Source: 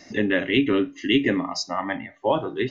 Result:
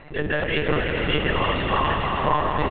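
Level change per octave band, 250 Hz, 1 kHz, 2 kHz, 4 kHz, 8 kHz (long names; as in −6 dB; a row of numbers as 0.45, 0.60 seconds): −6.0 dB, +7.5 dB, +2.5 dB, +0.5 dB, can't be measured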